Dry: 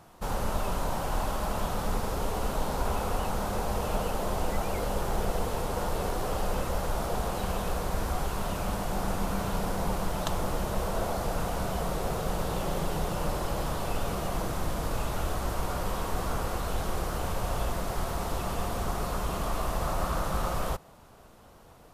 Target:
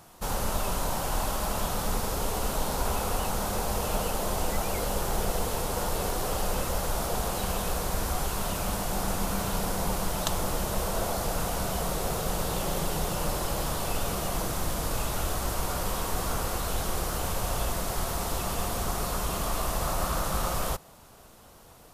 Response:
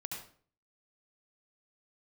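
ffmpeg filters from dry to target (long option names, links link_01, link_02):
-af "highshelf=frequency=3600:gain=9.5"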